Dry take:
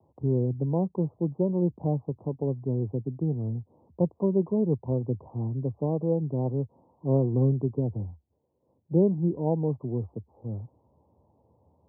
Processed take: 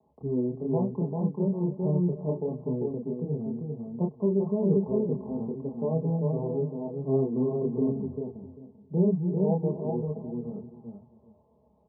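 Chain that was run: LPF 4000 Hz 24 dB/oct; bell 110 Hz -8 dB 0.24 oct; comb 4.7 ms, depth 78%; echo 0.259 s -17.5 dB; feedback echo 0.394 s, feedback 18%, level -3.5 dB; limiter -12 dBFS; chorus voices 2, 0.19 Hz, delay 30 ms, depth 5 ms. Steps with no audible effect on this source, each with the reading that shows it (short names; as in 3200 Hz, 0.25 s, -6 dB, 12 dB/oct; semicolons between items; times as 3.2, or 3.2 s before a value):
LPF 4000 Hz: input band ends at 810 Hz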